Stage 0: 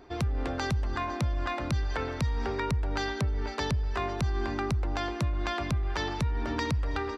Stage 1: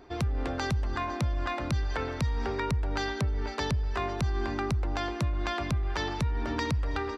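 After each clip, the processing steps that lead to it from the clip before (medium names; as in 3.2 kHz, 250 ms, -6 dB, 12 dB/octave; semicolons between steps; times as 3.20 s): no audible change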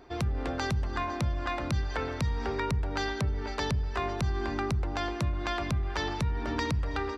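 de-hum 45.13 Hz, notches 9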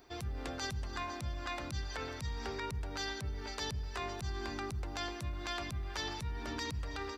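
pre-emphasis filter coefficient 0.8; peak limiter -32 dBFS, peak gain reduction 11 dB; trim +5 dB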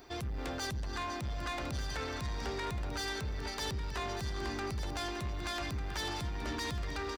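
saturation -39 dBFS, distortion -12 dB; delay 1197 ms -10 dB; trim +6 dB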